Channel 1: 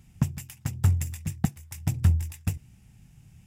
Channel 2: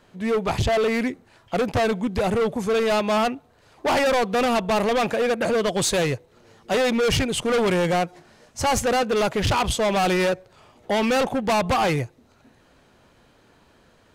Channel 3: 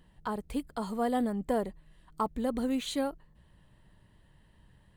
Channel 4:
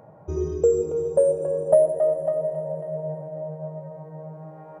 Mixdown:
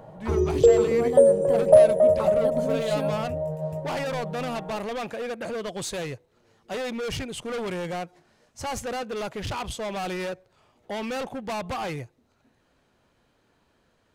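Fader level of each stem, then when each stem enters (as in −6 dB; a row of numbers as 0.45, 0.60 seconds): −19.0, −10.0, −2.5, +3.0 decibels; 1.25, 0.00, 0.00, 0.00 seconds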